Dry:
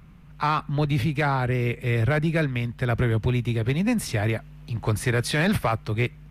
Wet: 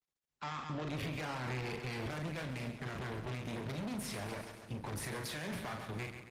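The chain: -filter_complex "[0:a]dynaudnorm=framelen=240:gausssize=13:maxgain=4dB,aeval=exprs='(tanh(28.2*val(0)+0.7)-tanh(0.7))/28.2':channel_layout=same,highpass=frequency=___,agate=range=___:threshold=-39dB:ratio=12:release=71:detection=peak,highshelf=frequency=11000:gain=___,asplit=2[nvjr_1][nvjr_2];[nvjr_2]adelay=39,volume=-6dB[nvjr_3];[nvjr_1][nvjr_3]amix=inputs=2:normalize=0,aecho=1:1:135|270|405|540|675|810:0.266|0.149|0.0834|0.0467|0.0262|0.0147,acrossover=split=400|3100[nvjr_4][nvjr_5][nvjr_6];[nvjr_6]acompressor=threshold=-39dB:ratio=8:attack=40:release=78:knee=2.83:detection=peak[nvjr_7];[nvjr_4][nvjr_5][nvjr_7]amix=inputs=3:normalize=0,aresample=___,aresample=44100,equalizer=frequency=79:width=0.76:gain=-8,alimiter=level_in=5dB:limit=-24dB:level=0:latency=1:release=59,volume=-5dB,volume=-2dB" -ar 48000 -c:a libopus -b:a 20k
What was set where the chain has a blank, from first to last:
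51, -44dB, -3, 32000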